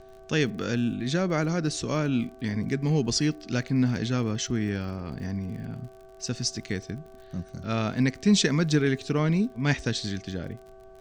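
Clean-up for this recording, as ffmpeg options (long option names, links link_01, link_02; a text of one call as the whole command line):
ffmpeg -i in.wav -af "adeclick=threshold=4,bandreject=frequency=382.4:width_type=h:width=4,bandreject=frequency=764.8:width_type=h:width=4,bandreject=frequency=1147.2:width_type=h:width=4,bandreject=frequency=1529.6:width_type=h:width=4,bandreject=frequency=660:width=30,agate=range=-21dB:threshold=-40dB" out.wav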